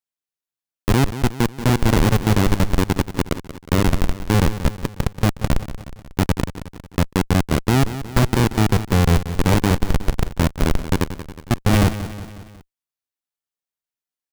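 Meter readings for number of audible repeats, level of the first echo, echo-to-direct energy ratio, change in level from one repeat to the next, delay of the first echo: 4, -12.5 dB, -11.0 dB, -5.5 dB, 182 ms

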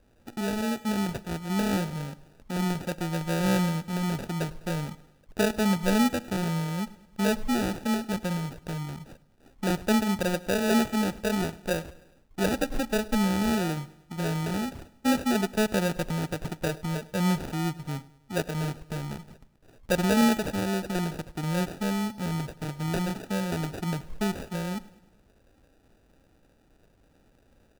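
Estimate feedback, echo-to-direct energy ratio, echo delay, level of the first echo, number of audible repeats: 52%, -19.5 dB, 103 ms, -21.0 dB, 3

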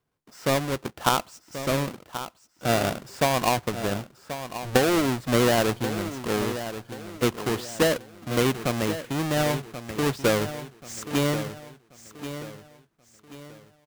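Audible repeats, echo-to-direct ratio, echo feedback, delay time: 3, -11.0 dB, 36%, 1083 ms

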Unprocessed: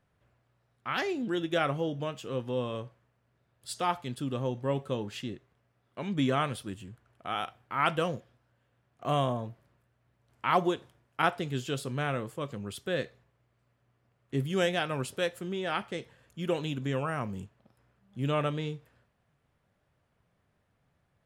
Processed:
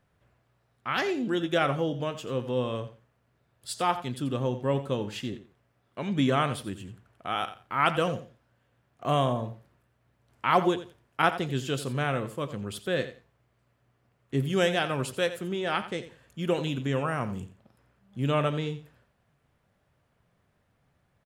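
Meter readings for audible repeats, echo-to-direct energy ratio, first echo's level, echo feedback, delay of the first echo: 2, -13.5 dB, -13.5 dB, 19%, 87 ms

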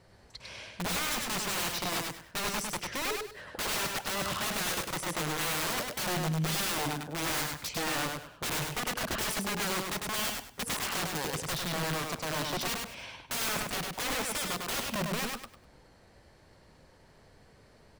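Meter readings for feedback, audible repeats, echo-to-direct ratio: 25%, 3, -3.0 dB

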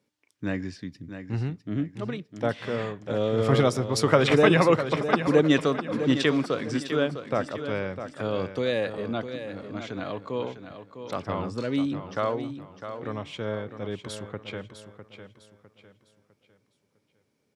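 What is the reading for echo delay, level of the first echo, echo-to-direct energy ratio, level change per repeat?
654 ms, -10.0 dB, -9.5 dB, -9.0 dB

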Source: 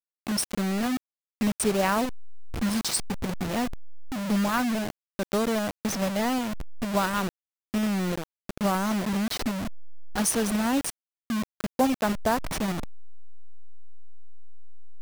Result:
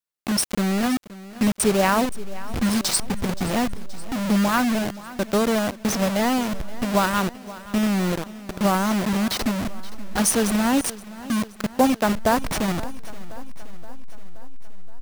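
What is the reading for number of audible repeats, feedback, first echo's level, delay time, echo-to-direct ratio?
4, 59%, -17.5 dB, 524 ms, -15.5 dB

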